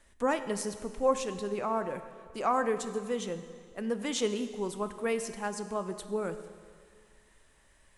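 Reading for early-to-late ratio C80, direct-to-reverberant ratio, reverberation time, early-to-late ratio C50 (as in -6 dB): 12.0 dB, 9.5 dB, 2.0 s, 10.5 dB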